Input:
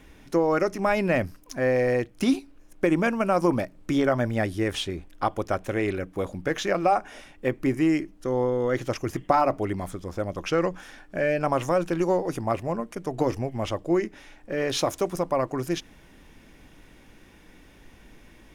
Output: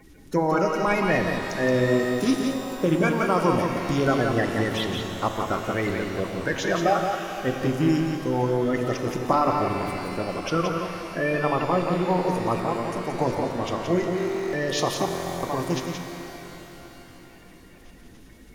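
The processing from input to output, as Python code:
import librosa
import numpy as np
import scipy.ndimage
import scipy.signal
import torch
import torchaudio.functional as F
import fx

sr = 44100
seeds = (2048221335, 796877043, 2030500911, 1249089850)

y = fx.spec_quant(x, sr, step_db=30)
y = fx.cheby1_lowpass(y, sr, hz=4900.0, order=8, at=(10.5, 12.27))
y = y + 10.0 ** (-5.5 / 20.0) * np.pad(y, (int(174 * sr / 1000.0), 0))[:len(y)]
y = fx.buffer_glitch(y, sr, at_s=(14.16, 15.06), block=1024, repeats=15)
y = fx.rev_shimmer(y, sr, seeds[0], rt60_s=3.5, semitones=12, shimmer_db=-8, drr_db=5.5)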